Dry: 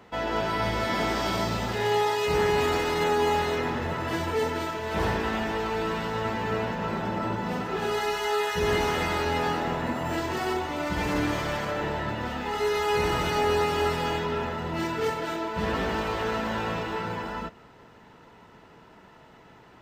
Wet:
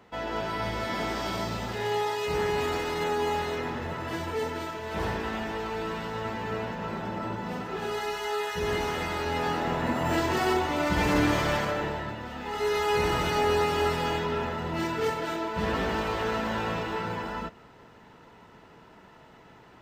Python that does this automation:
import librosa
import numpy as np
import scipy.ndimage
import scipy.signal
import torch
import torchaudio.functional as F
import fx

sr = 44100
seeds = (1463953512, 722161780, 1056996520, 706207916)

y = fx.gain(x, sr, db=fx.line((9.15, -4.0), (10.12, 3.0), (11.56, 3.0), (12.26, -7.0), (12.73, -0.5)))